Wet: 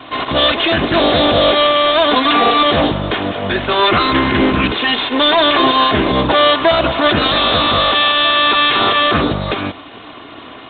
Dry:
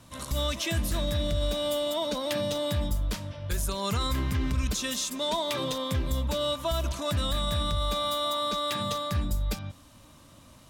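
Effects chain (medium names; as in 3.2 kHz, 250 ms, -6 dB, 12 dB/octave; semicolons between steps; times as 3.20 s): comb filter that takes the minimum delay 2.8 ms; Bessel high-pass 270 Hz, order 2; 2.12–2.63 s: comb 4.2 ms, depth 91%; loudness maximiser +26 dB; trim -1 dB; G.726 24 kbps 8 kHz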